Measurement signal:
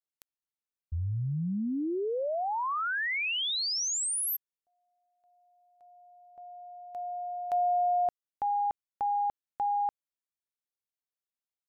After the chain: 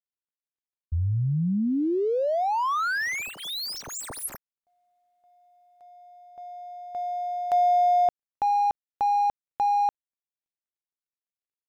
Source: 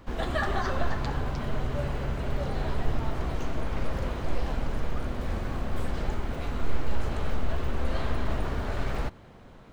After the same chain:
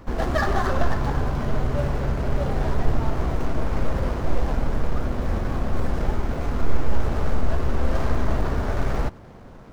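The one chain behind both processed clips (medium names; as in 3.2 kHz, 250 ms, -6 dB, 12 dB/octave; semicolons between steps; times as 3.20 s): median filter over 15 samples; trim +6.5 dB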